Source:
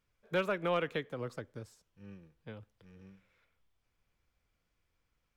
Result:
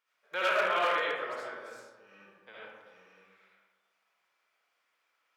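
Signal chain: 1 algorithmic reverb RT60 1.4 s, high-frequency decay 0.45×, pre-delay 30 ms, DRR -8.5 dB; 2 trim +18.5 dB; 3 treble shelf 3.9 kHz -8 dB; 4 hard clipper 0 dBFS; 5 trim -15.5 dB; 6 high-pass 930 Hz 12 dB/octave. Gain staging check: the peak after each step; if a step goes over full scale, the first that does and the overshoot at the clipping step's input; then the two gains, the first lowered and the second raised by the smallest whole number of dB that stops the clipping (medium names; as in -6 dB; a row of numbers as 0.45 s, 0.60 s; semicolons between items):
-12.0 dBFS, +6.5 dBFS, +6.0 dBFS, 0.0 dBFS, -15.5 dBFS, -16.5 dBFS; step 2, 6.0 dB; step 2 +12.5 dB, step 5 -9.5 dB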